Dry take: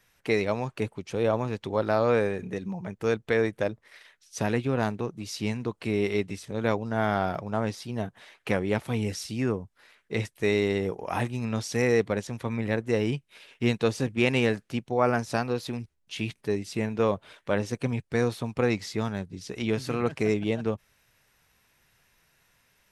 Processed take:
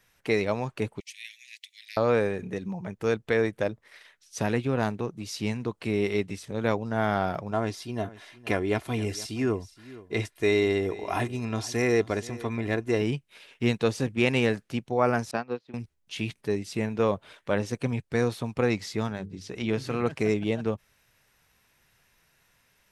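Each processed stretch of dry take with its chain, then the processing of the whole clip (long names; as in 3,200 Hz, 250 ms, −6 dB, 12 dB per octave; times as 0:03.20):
0:01.00–0:01.97: Butterworth high-pass 1,900 Hz 96 dB per octave + high-shelf EQ 9,200 Hz +6.5 dB
0:07.51–0:13.02: comb filter 2.9 ms, depth 47% + single-tap delay 471 ms −18.5 dB
0:15.31–0:15.74: band-pass filter 160–3,600 Hz + expander for the loud parts 2.5 to 1, over −40 dBFS
0:19.07–0:19.95: high-shelf EQ 7,600 Hz −7 dB + mains-hum notches 50/100/150/200/250/300/350/400/450 Hz
whole clip: no processing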